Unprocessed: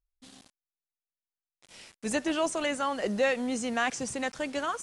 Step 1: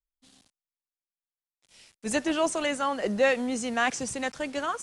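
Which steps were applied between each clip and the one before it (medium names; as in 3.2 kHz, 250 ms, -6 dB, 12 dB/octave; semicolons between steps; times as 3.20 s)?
three bands expanded up and down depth 40%; trim +2 dB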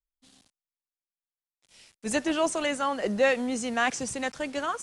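no audible change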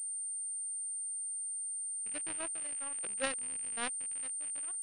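rattle on loud lows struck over -46 dBFS, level -19 dBFS; power-law waveshaper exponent 3; class-D stage that switches slowly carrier 8.9 kHz; trim -4 dB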